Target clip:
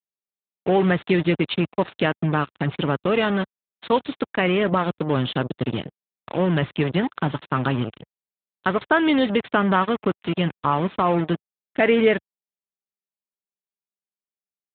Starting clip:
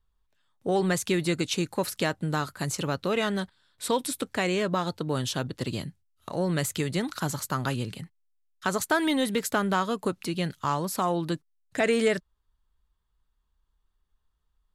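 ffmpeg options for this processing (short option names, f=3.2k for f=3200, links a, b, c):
-af "acrusher=bits=4:mix=0:aa=0.5,volume=6.5dB" -ar 8000 -c:a libopencore_amrnb -b:a 12200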